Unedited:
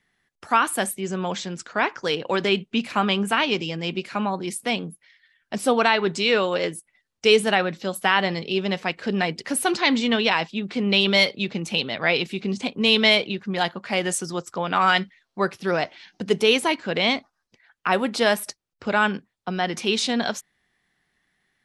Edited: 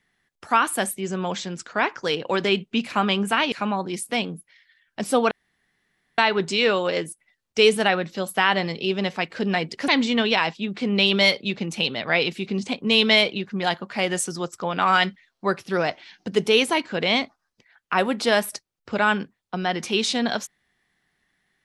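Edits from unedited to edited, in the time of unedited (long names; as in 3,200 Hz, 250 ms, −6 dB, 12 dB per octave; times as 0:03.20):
0:03.52–0:04.06: remove
0:05.85: splice in room tone 0.87 s
0:09.55–0:09.82: remove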